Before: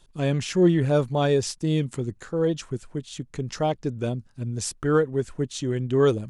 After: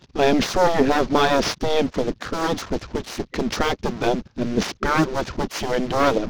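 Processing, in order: CVSD 32 kbps; low shelf 460 Hz +9.5 dB; in parallel at -1.5 dB: limiter -11.5 dBFS, peak gain reduction 9.5 dB; on the sum: sample leveller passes 2; spectral gate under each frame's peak -10 dB weak

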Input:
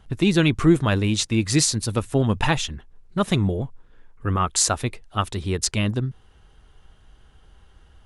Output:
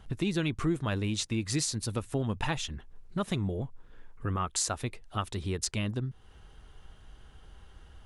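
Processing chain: compressor 2:1, threshold -36 dBFS, peak gain reduction 13.5 dB

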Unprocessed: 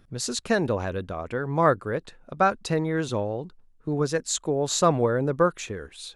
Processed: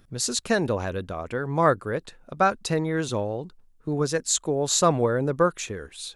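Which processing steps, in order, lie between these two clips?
high shelf 5100 Hz +6.5 dB

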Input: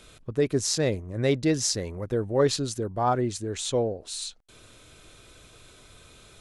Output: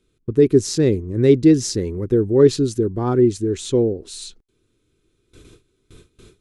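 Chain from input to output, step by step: gate with hold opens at -40 dBFS; resonant low shelf 490 Hz +8 dB, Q 3

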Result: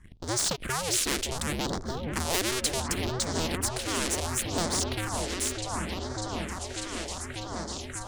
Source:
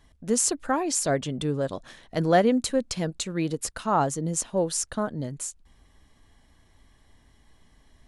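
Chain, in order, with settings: cycle switcher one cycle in 2, inverted; LPF 10000 Hz 24 dB/oct; low shelf 110 Hz +10.5 dB; sample leveller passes 2; repeats that get brighter 0.596 s, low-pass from 400 Hz, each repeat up 1 oct, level -3 dB; phaser stages 4, 0.69 Hz, lowest notch 130–2700 Hz; spectral compressor 2:1; gain -6 dB

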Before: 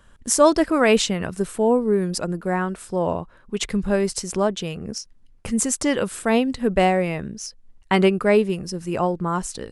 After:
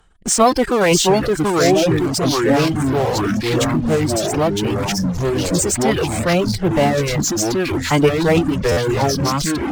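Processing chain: echoes that change speed 0.591 s, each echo -3 st, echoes 3; formant-preserving pitch shift -4.5 st; in parallel at -9 dB: fuzz box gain 37 dB, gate -44 dBFS; on the sum: reverb removal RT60 0.55 s; stuck buffer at 8.71, samples 512, times 4

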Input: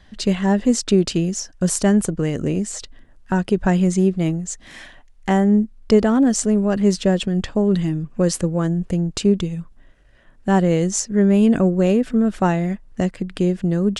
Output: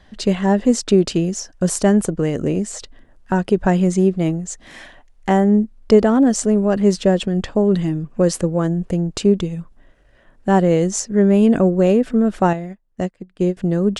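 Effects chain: bell 570 Hz +5 dB 2.3 oct; 12.53–13.57 upward expander 2.5:1, over -27 dBFS; gain -1 dB

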